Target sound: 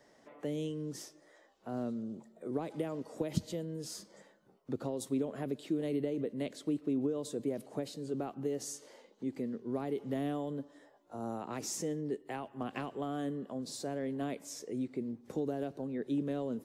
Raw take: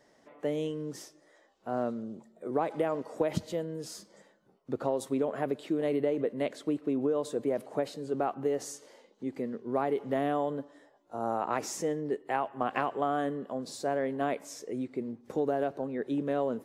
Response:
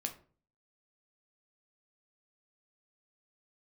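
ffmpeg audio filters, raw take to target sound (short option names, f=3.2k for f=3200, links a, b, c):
-filter_complex "[0:a]acrossover=split=350|3000[a][b][c];[b]acompressor=threshold=-52dB:ratio=2[d];[a][d][c]amix=inputs=3:normalize=0"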